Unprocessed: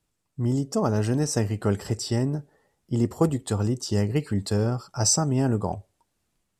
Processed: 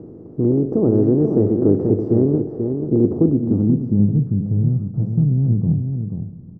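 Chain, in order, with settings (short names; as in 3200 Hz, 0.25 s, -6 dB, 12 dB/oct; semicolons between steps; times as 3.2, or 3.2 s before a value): per-bin compression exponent 0.4; outdoor echo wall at 83 m, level -6 dB; low-pass sweep 370 Hz -> 160 Hz, 2.96–4.37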